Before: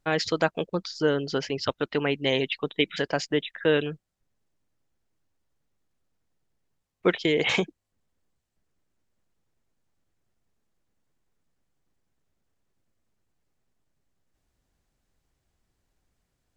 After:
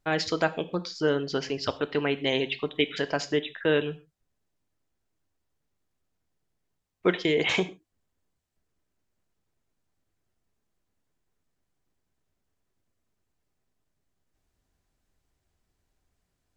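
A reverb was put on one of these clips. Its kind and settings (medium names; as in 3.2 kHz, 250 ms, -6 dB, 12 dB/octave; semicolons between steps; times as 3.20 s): gated-style reverb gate 160 ms falling, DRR 10.5 dB; trim -1.5 dB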